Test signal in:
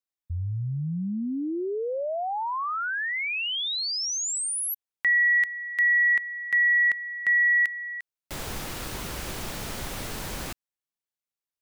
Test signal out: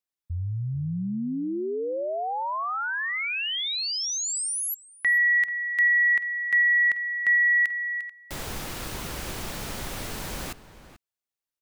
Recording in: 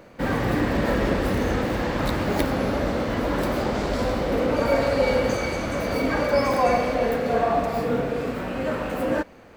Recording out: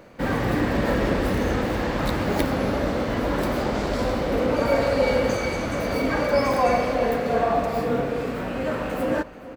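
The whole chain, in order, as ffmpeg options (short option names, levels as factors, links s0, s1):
-filter_complex "[0:a]asplit=2[s0][s1];[s1]adelay=437.3,volume=0.2,highshelf=f=4000:g=-9.84[s2];[s0][s2]amix=inputs=2:normalize=0"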